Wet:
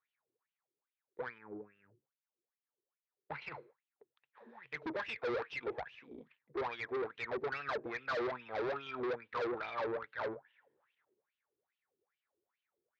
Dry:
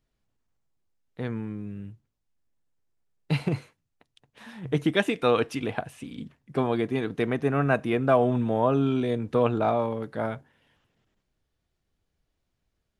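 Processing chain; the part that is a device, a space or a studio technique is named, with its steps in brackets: 1.38–3.42 s: low-pass 1.1 kHz 6 dB/octave; wah-wah guitar rig (wah-wah 2.4 Hz 350–3000 Hz, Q 8.4; valve stage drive 44 dB, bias 0.45; cabinet simulation 84–4300 Hz, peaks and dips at 97 Hz -5 dB, 190 Hz -10 dB, 290 Hz -7 dB, 680 Hz -6 dB, 2.9 kHz -9 dB); trim +12 dB

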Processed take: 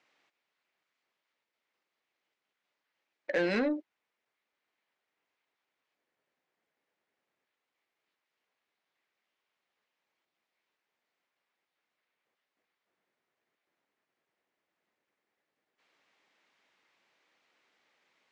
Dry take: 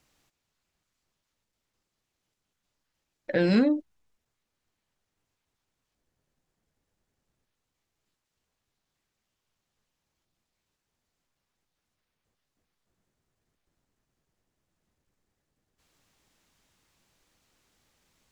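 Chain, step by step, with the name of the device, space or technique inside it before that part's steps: intercom (band-pass 400–3600 Hz; peaking EQ 2.1 kHz +5 dB 0.58 oct; saturation -21.5 dBFS, distortion -17 dB)

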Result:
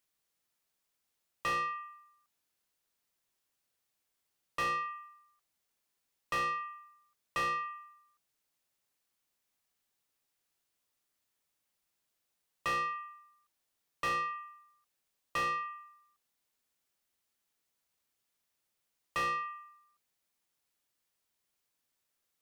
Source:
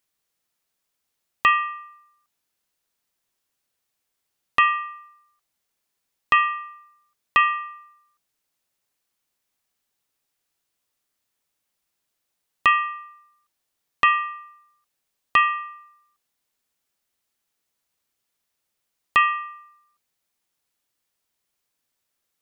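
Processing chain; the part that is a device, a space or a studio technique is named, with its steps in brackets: saturation between pre-emphasis and de-emphasis (treble shelf 2.6 kHz +11.5 dB; saturation -23 dBFS, distortion -3 dB; treble shelf 2.6 kHz -11.5 dB); trim -4 dB

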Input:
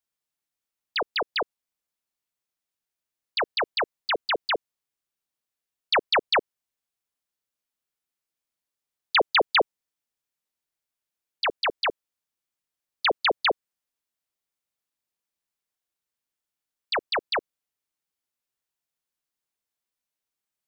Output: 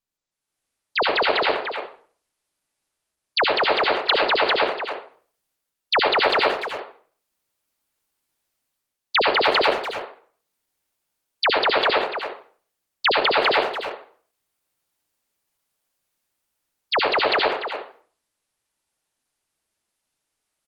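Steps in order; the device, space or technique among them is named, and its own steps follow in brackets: speakerphone in a meeting room (reverberation RT60 0.45 s, pre-delay 64 ms, DRR -1 dB; speakerphone echo 290 ms, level -8 dB; level rider gain up to 14.5 dB; trim -5.5 dB; Opus 20 kbps 48 kHz)

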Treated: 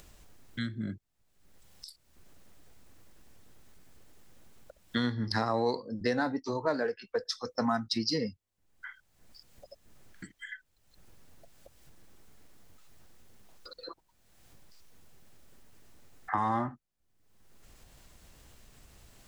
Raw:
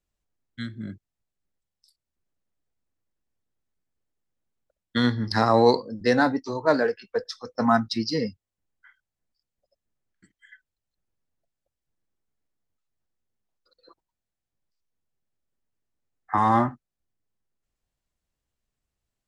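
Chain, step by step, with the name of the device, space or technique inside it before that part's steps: upward and downward compression (upward compressor, threshold -33 dBFS; compression 3:1, threshold -29 dBFS, peak gain reduction 12.5 dB); 7.17–8.18 s: treble shelf 4.2 kHz +6 dB

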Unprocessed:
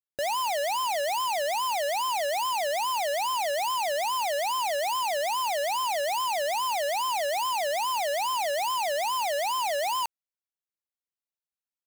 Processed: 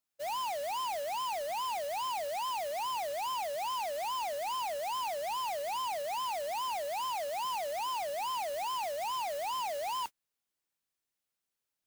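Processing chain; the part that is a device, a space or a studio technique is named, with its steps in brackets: aircraft radio (band-pass 330–2600 Hz; hard clipper -34 dBFS, distortion -9 dB; white noise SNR 13 dB; gate -37 dBFS, range -40 dB)

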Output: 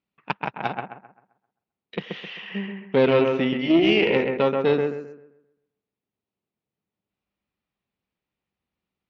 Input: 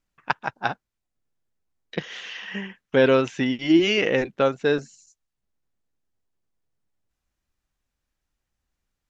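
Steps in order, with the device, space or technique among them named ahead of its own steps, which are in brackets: analogue delay pedal into a guitar amplifier (bucket-brigade echo 131 ms, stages 2048, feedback 36%, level -4.5 dB; valve stage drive 13 dB, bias 0.65; cabinet simulation 110–4100 Hz, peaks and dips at 200 Hz +6 dB, 410 Hz +4 dB, 1.6 kHz -7 dB, 2.5 kHz +3 dB); trim +1.5 dB

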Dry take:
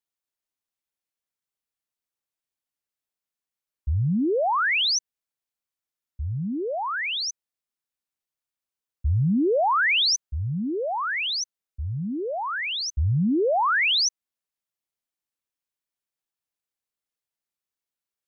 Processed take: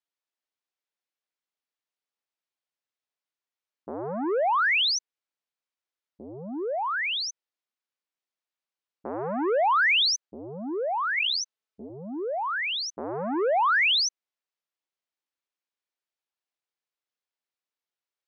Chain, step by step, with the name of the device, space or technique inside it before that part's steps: public-address speaker with an overloaded transformer (transformer saturation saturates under 460 Hz; band-pass 310–5100 Hz); 11.17–11.90 s: comb 4.6 ms, depth 68%

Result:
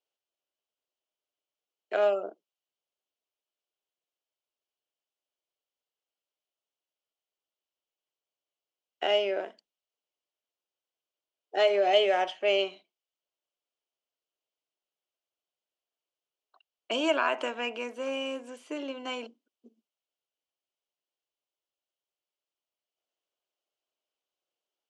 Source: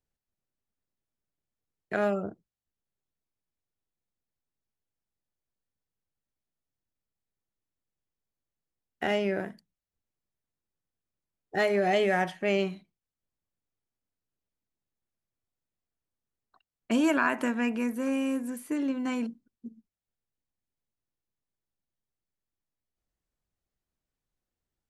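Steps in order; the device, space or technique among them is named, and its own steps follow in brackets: phone speaker on a table (cabinet simulation 370–6900 Hz, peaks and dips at 620 Hz +5 dB, 1.8 kHz -8 dB, 3 kHz +10 dB)

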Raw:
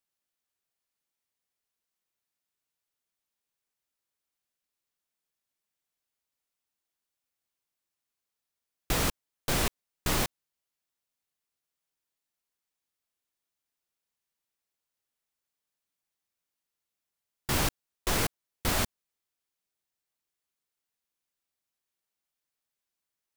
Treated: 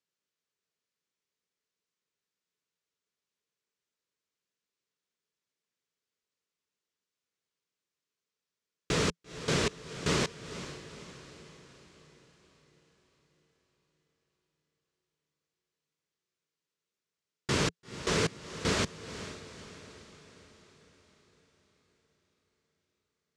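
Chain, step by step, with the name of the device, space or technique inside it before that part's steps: car door speaker (cabinet simulation 84–7400 Hz, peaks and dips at 170 Hz +6 dB, 430 Hz +8 dB, 770 Hz -9 dB); echo that smears into a reverb 464 ms, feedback 53%, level -12.5 dB

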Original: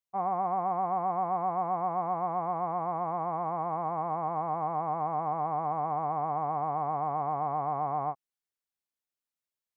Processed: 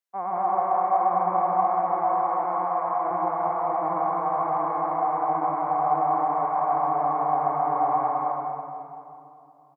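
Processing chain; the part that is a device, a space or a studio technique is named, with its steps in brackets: stadium PA (high-pass 250 Hz 12 dB/octave; peaking EQ 1.6 kHz +6 dB 0.5 oct; loudspeakers at several distances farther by 53 m -10 dB, 72 m -5 dB; reverberation RT60 2.7 s, pre-delay 87 ms, DRR -2 dB); 2.45–3.11 s: high-pass 360 Hz 6 dB/octave

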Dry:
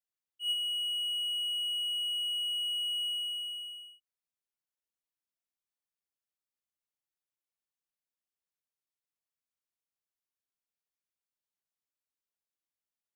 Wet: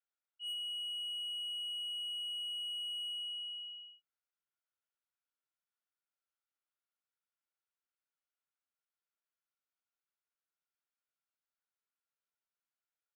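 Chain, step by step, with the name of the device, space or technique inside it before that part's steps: intercom (band-pass 440–3600 Hz; peaking EQ 1.4 kHz +11 dB 0.24 oct; saturation -36 dBFS, distortion -16 dB; doubling 20 ms -9 dB); trim -3 dB

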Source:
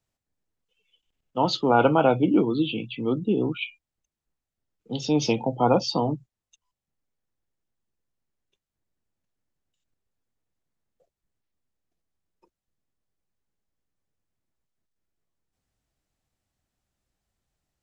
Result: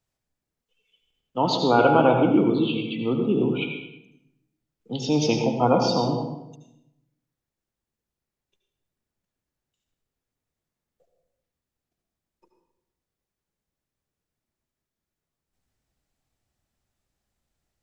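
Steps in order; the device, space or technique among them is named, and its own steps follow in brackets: bathroom (reverberation RT60 0.85 s, pre-delay 70 ms, DRR 3 dB)

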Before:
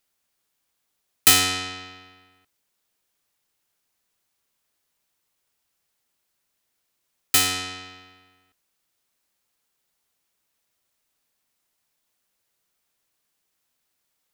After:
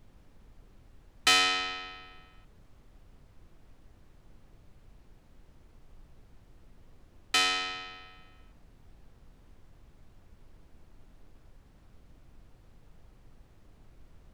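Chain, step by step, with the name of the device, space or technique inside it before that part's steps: aircraft cabin announcement (band-pass 440–4000 Hz; saturation -14 dBFS, distortion -18 dB; brown noise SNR 15 dB)

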